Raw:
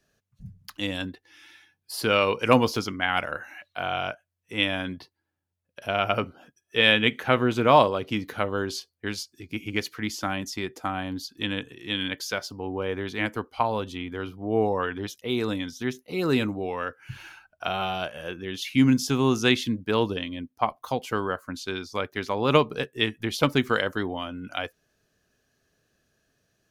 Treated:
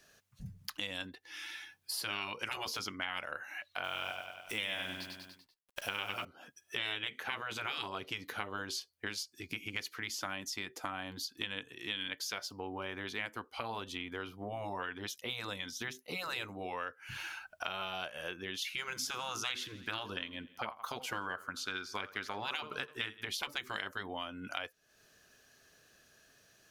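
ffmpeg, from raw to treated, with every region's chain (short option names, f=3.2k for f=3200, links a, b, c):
-filter_complex "[0:a]asettb=1/sr,asplit=3[a][b][c];[a]atrim=end=3.844[d];[b]atrim=start=3.84:end=6.25,asetpts=PTS-STARTPTS,afade=t=in:d=0.004:c=qsin,afade=t=out:st=2.406:d=0.004:c=qsin,highshelf=f=3.6k:g=7,acrusher=bits=9:dc=4:mix=0:aa=0.000001,aecho=1:1:97|194|291|388|485:0.473|0.203|0.0875|0.0376|0.0162,atrim=end_sample=106281[e];[c]atrim=start=6.246[f];[d][e]acrossfade=d=0.004:c1=hsin:c2=qsin[g];[g][f]acrossfade=d=0.004:c1=qsin:c2=hsin,asettb=1/sr,asplit=3[h][i][j];[h]atrim=end=18.654[k];[i]atrim=start=18.65:end=23.24,asetpts=PTS-STARTPTS,afade=t=in:d=0.004:c=qsin,afade=t=out:st=4.586:d=0.004:c=qsin,equalizer=f=1.4k:w=3.1:g=8.5,aecho=1:1:84|168|252|336:0.0668|0.0374|0.021|0.0117,atrim=end_sample=202419[l];[j]atrim=start=23.236[m];[k][l]acrossfade=d=0.004:c1=hsin:c2=qsin[n];[n][m]acrossfade=d=0.004:c1=qsin:c2=hsin,afftfilt=real='re*lt(hypot(re,im),0.251)':imag='im*lt(hypot(re,im),0.251)':win_size=1024:overlap=0.75,lowshelf=f=500:g=-11,acompressor=threshold=-51dB:ratio=3,volume=9.5dB"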